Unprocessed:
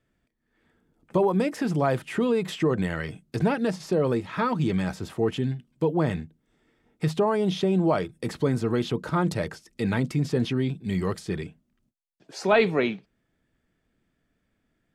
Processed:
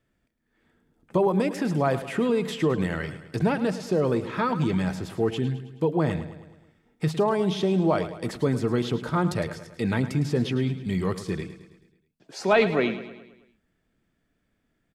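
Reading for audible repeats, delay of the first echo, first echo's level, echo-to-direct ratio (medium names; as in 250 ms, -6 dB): 5, 107 ms, -13.0 dB, -11.5 dB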